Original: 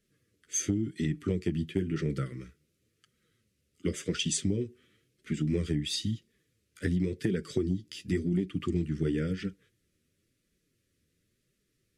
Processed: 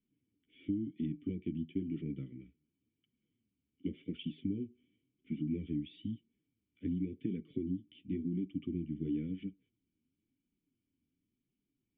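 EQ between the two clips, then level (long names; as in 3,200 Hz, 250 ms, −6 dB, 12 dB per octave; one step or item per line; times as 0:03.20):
formant resonators in series i
notch filter 670 Hz, Q 14
0.0 dB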